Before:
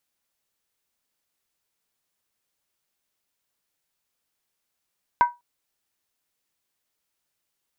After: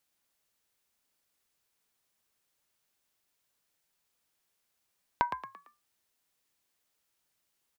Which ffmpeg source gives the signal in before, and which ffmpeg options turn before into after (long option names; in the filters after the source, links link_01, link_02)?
-f lavfi -i "aevalsrc='0.316*pow(10,-3*t/0.21)*sin(2*PI*965*t)+0.0891*pow(10,-3*t/0.166)*sin(2*PI*1538.2*t)+0.0251*pow(10,-3*t/0.144)*sin(2*PI*2061.2*t)+0.00708*pow(10,-3*t/0.139)*sin(2*PI*2215.6*t)+0.002*pow(10,-3*t/0.129)*sin(2*PI*2560.1*t)':duration=0.2:sample_rate=44100"
-filter_complex "[0:a]acompressor=threshold=-26dB:ratio=6,asplit=2[link_01][link_02];[link_02]asplit=4[link_03][link_04][link_05][link_06];[link_03]adelay=113,afreqshift=56,volume=-8.5dB[link_07];[link_04]adelay=226,afreqshift=112,volume=-16.7dB[link_08];[link_05]adelay=339,afreqshift=168,volume=-24.9dB[link_09];[link_06]adelay=452,afreqshift=224,volume=-33dB[link_10];[link_07][link_08][link_09][link_10]amix=inputs=4:normalize=0[link_11];[link_01][link_11]amix=inputs=2:normalize=0"